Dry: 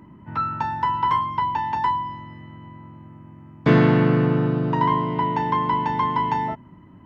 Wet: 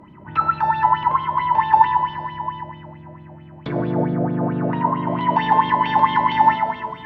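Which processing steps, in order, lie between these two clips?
low-pass that closes with the level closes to 710 Hz, closed at -14 dBFS; treble shelf 2.1 kHz -2.5 dB, from 5.21 s +12 dB; peak limiter -18 dBFS, peak gain reduction 12.5 dB; plate-style reverb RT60 2.3 s, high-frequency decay 0.95×, DRR -0.5 dB; sweeping bell 4.5 Hz 570–3700 Hz +16 dB; trim -1 dB

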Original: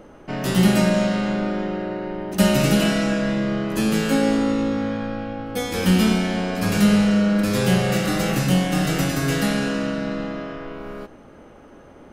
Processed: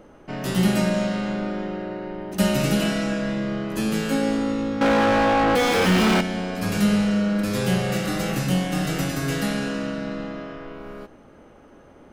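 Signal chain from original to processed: 4.81–6.21 s: overdrive pedal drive 40 dB, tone 1.6 kHz, clips at -7 dBFS; trim -3.5 dB

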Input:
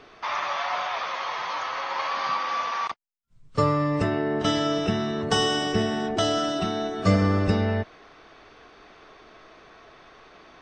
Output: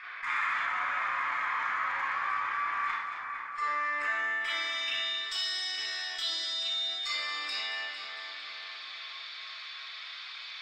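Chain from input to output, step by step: high-pass 1.3 kHz 12 dB/octave; treble shelf 2.1 kHz -6.5 dB; band-stop 6.2 kHz, Q 5; 0.59–2.84 s: tilt EQ -4.5 dB/octave; gain riding 0.5 s; band-pass sweep 1.7 kHz -> 4.1 kHz, 4.14–5.30 s; Chebyshev shaper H 7 -43 dB, 8 -35 dB, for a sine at -27.5 dBFS; two-band feedback delay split 2.3 kHz, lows 458 ms, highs 227 ms, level -13 dB; reverberation RT60 0.50 s, pre-delay 30 ms, DRR -9 dB; level flattener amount 50%

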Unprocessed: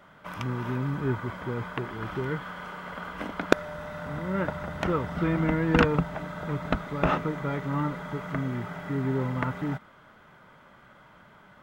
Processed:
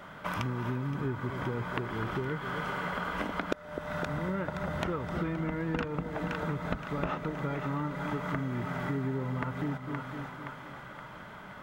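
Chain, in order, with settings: on a send: two-band feedback delay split 730 Hz, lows 254 ms, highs 521 ms, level -13 dB; on the sum: compression 8:1, threshold -37 dBFS, peak gain reduction 23.5 dB; trim +7 dB

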